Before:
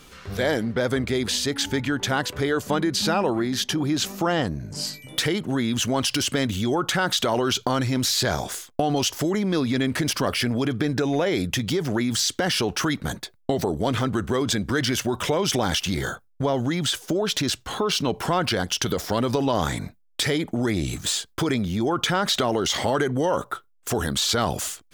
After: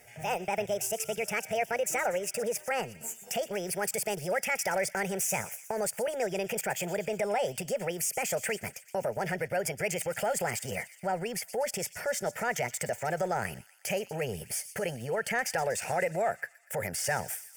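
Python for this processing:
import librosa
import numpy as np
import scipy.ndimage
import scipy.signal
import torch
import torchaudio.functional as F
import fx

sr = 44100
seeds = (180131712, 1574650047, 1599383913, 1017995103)

y = fx.speed_glide(x, sr, from_pct=160, to_pct=124)
y = scipy.signal.sosfilt(scipy.signal.butter(2, 110.0, 'highpass', fs=sr, output='sos'), y)
y = fx.transient(y, sr, attack_db=-3, sustain_db=-8)
y = fx.fixed_phaser(y, sr, hz=1100.0, stages=6)
y = fx.echo_wet_highpass(y, sr, ms=121, feedback_pct=62, hz=2900.0, wet_db=-13)
y = y * librosa.db_to_amplitude(-3.5)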